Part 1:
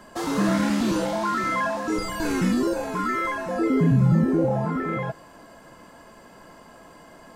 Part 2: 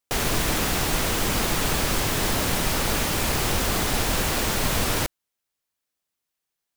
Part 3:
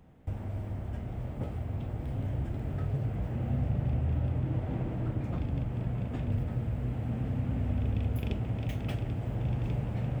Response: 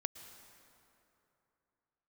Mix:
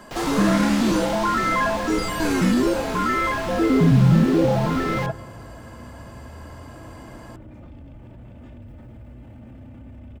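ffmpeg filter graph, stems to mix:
-filter_complex "[0:a]volume=1dB,asplit=2[a][b];[b]volume=-9dB[c];[1:a]acrossover=split=5400[d][e];[e]acompressor=threshold=-43dB:ratio=4:attack=1:release=60[f];[d][f]amix=inputs=2:normalize=0,volume=-8.5dB[g];[2:a]aecho=1:1:3.4:0.51,alimiter=level_in=6.5dB:limit=-24dB:level=0:latency=1:release=15,volume=-6.5dB,adelay=2300,volume=-5dB[h];[3:a]atrim=start_sample=2205[i];[c][i]afir=irnorm=-1:irlink=0[j];[a][g][h][j]amix=inputs=4:normalize=0"

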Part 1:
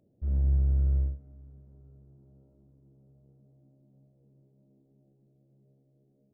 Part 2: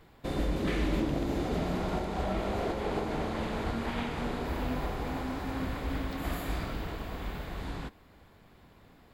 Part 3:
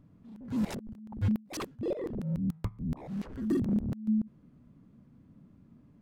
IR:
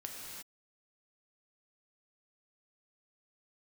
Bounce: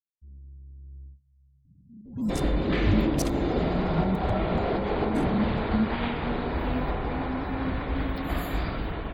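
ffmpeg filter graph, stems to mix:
-filter_complex "[0:a]acompressor=threshold=-27dB:ratio=6,volume=-17.5dB[a];[1:a]adelay=2050,volume=-5dB[b];[2:a]bass=f=250:g=6,treble=f=4k:g=13,adelay=1650,volume=-12.5dB[c];[a][b][c]amix=inputs=3:normalize=0,afftdn=nr=34:nf=-56,dynaudnorm=f=820:g=3:m=10dB"

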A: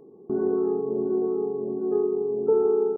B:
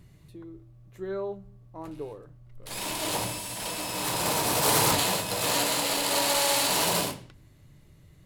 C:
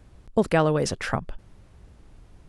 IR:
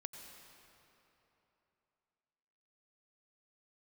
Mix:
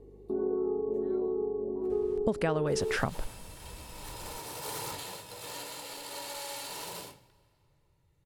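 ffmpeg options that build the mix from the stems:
-filter_complex "[0:a]equalizer=f=250:t=o:w=1:g=6,equalizer=f=500:t=o:w=1:g=10,equalizer=f=1k:t=o:w=1:g=7,aeval=exprs='val(0)+0.01*(sin(2*PI*50*n/s)+sin(2*PI*2*50*n/s)/2+sin(2*PI*3*50*n/s)/3+sin(2*PI*4*50*n/s)/4+sin(2*PI*5*50*n/s)/5)':c=same,volume=-14.5dB[a];[1:a]aecho=1:1:2.2:0.41,volume=-17.5dB,asplit=2[b][c];[c]volume=-12.5dB[d];[2:a]adelay=1900,volume=1dB,asplit=2[e][f];[f]volume=-18.5dB[g];[3:a]atrim=start_sample=2205[h];[d][g]amix=inputs=2:normalize=0[i];[i][h]afir=irnorm=-1:irlink=0[j];[a][b][e][j]amix=inputs=4:normalize=0,acompressor=threshold=-26dB:ratio=5"

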